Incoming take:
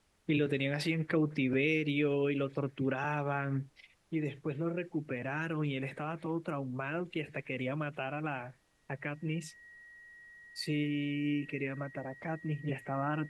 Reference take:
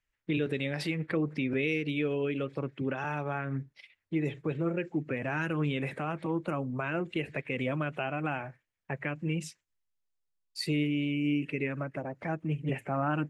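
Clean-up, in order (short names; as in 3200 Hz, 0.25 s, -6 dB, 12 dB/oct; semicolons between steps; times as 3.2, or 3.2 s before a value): notch 1900 Hz, Q 30; expander -49 dBFS, range -21 dB; gain correction +4 dB, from 3.72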